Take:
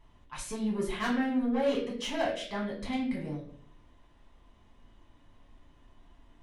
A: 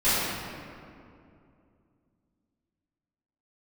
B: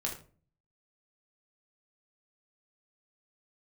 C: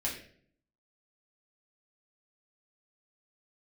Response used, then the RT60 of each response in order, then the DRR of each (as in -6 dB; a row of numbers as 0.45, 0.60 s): C; 2.5, 0.40, 0.55 s; -17.0, -1.0, -5.0 dB